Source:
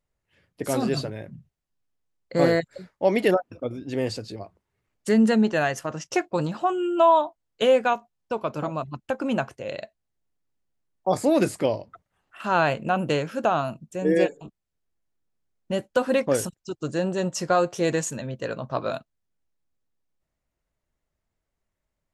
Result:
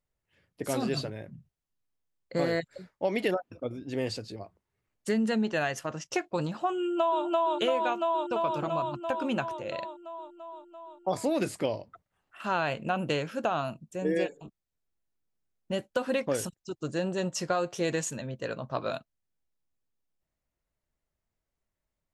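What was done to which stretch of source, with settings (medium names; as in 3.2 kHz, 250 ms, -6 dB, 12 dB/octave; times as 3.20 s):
6.78–7.24 s: echo throw 340 ms, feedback 75%, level -0.5 dB
whole clip: dynamic bell 3.1 kHz, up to +4 dB, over -40 dBFS, Q 0.9; compression, threshold -19 dBFS; trim -4.5 dB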